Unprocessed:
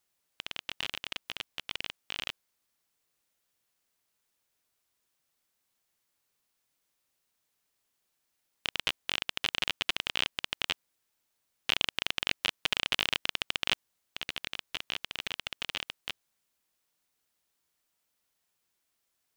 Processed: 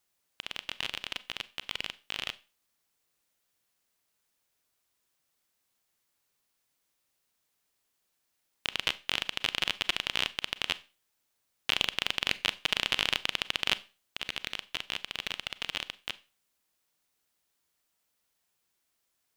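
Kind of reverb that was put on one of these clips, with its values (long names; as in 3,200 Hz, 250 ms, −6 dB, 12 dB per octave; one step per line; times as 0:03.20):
four-comb reverb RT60 0.32 s, combs from 30 ms, DRR 16 dB
level +1 dB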